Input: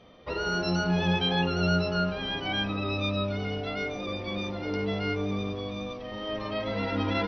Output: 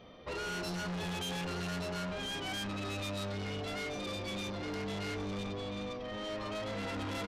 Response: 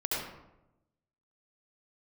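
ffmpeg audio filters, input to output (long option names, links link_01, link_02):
-filter_complex "[0:a]asettb=1/sr,asplit=3[link_01][link_02][link_03];[link_01]atrim=end=3.174[link_04];[link_02]atrim=start=3.17:end=5.47,asetpts=PTS-STARTPTS,afade=type=in:duration=0.004:curve=qsin,afade=type=out:start_time=2.296:duration=0.004:curve=qsin,bass=frequency=250:gain=1,treble=frequency=4000:gain=7[link_05];[link_03]atrim=start=5.466[link_06];[link_04][link_05]acrossfade=duration=0.004:curve1=hsin:curve2=qsin[link_07];[link_07][link_06]acrossfade=duration=0.004:curve1=qsin:curve2=hsin,asoftclip=type=tanh:threshold=-36dB,aresample=32000,aresample=44100"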